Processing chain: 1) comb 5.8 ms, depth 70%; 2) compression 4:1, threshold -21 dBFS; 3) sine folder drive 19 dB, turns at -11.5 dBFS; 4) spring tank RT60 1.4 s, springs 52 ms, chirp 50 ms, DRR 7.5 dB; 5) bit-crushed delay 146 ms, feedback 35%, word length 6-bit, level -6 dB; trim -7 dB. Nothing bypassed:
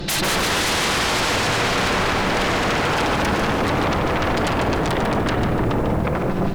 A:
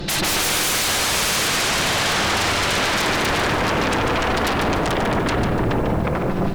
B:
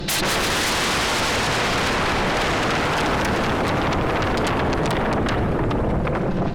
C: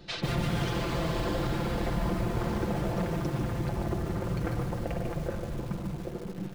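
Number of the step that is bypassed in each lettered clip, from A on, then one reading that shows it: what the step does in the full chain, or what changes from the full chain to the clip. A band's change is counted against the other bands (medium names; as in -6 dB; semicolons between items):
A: 2, 8 kHz band +6.0 dB; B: 5, crest factor change -1.5 dB; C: 3, crest factor change +3.5 dB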